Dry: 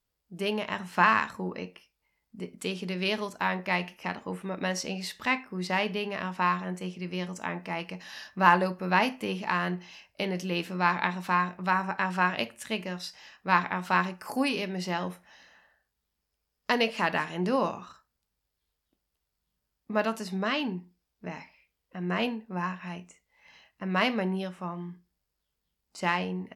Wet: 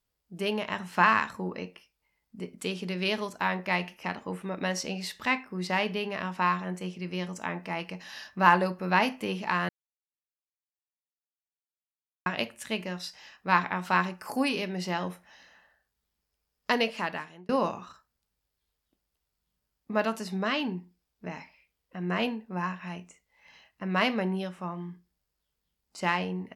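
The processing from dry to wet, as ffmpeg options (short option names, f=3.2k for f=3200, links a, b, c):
-filter_complex "[0:a]asplit=4[a][b][c][d];[a]atrim=end=9.69,asetpts=PTS-STARTPTS,afade=t=out:st=9.686:d=0.004:c=hsin[e];[b]atrim=start=9.69:end=12.26,asetpts=PTS-STARTPTS,volume=0[f];[c]atrim=start=12.26:end=17.49,asetpts=PTS-STARTPTS,afade=t=in:d=0.004:c=hsin,afade=t=out:st=4.48:d=0.75[g];[d]atrim=start=17.49,asetpts=PTS-STARTPTS,afade=t=in:d=0.004:c=hsin[h];[e][f][g][h]concat=n=4:v=0:a=1"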